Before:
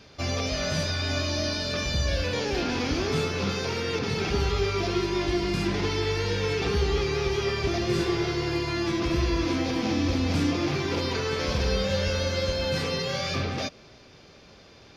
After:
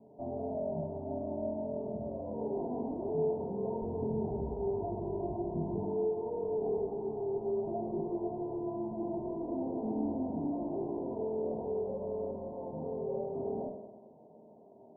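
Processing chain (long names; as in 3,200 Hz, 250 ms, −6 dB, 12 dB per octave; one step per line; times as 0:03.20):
high-pass filter 200 Hz 12 dB per octave, from 0:03.82 41 Hz, from 0:05.78 250 Hz
tube saturation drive 32 dB, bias 0.5
Chebyshev low-pass with heavy ripple 950 Hz, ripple 6 dB
convolution reverb RT60 1.3 s, pre-delay 4 ms, DRR −0.5 dB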